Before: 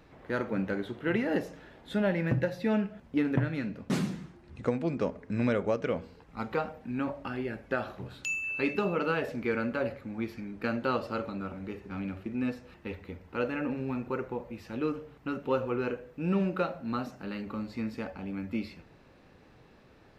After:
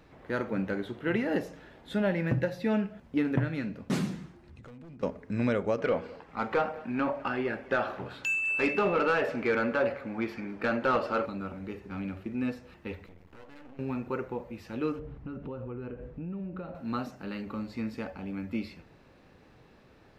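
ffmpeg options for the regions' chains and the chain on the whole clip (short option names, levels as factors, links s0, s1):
-filter_complex "[0:a]asettb=1/sr,asplit=3[s0][s1][s2];[s0]atrim=end=4.414[s3];[s1]atrim=start=4.41:end=5.03,asetpts=PTS-STARTPTS,afade=t=in:d=0.004:c=qsin,afade=t=out:st=0.616:d=0.004:c=qsin,asoftclip=type=hard:threshold=0.0316,asubboost=boost=9:cutoff=250,acompressor=threshold=0.00447:ratio=5:attack=3.2:release=140:knee=1:detection=peak[s4];[s2]atrim=start=5.026[s5];[s3][s4]acrossfade=d=0.004:c1=hsin:c2=qsin[s6];[s6][s5]acrossfade=d=0.004:c1=qsin:c2=hsin,asettb=1/sr,asplit=3[s7][s8][s9];[s7]atrim=end=5.784[s10];[s8]atrim=start=5.78:end=11.26,asetpts=PTS-STARTPTS,afade=t=in:d=0.004:c=qsin,afade=t=out:st=5.476:d=0.004:c=qsin,bandreject=f=3900:w=21,asplit=2[s11][s12];[s12]highpass=f=720:p=1,volume=6.31,asoftclip=type=tanh:threshold=0.168[s13];[s11][s13]amix=inputs=2:normalize=0,lowpass=f=1800:p=1,volume=0.501,aecho=1:1:207:0.0891,atrim=end_sample=241668[s14];[s9]atrim=start=11.256[s15];[s10][s14]acrossfade=d=0.004:c1=hsin:c2=qsin[s16];[s16][s15]acrossfade=d=0.004:c1=qsin:c2=hsin,asettb=1/sr,asplit=3[s17][s18][s19];[s17]atrim=end=13.064[s20];[s18]atrim=start=13.06:end=13.79,asetpts=PTS-STARTPTS,afade=t=in:d=0.004:c=qsin,afade=t=out:st=0.726:d=0.004:c=qsin,acompressor=threshold=0.00631:ratio=5:attack=3.2:release=140:knee=1:detection=peak,aeval=exprs='max(val(0),0)':c=same[s21];[s19]atrim=start=13.786[s22];[s20][s21]acrossfade=d=0.004:c1=hsin:c2=qsin[s23];[s23][s22]acrossfade=d=0.004:c1=qsin:c2=hsin,asettb=1/sr,asplit=3[s24][s25][s26];[s24]atrim=end=14.994[s27];[s25]atrim=start=14.99:end=16.75,asetpts=PTS-STARTPTS,afade=t=in:d=0.004:c=qsin,afade=t=out:st=1.756:d=0.004:c=qsin,aemphasis=mode=reproduction:type=riaa,acompressor=threshold=0.0158:ratio=6:attack=3.2:release=140:knee=1:detection=peak[s28];[s26]atrim=start=16.746[s29];[s27][s28]acrossfade=d=0.004:c1=hsin:c2=qsin[s30];[s30][s29]acrossfade=d=0.004:c1=qsin:c2=hsin"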